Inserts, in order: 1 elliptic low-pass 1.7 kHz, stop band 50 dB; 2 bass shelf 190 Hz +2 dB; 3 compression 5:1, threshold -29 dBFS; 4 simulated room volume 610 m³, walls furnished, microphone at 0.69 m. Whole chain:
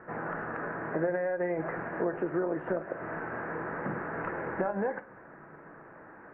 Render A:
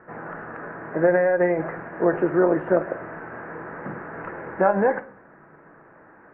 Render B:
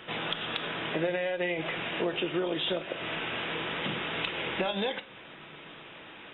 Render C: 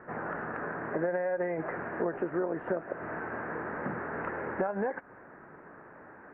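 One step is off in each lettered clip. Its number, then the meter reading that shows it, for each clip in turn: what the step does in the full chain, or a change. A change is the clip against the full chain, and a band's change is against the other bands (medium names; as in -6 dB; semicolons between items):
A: 3, mean gain reduction 3.5 dB; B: 1, crest factor change +2.0 dB; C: 4, echo-to-direct -10.0 dB to none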